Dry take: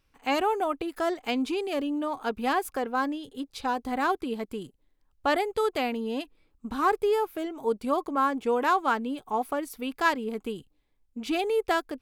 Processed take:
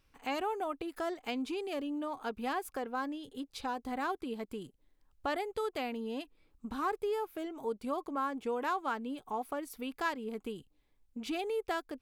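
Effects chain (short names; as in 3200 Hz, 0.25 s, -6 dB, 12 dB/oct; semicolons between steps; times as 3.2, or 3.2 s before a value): compressor 1.5:1, threshold -48 dBFS, peak gain reduction 10.5 dB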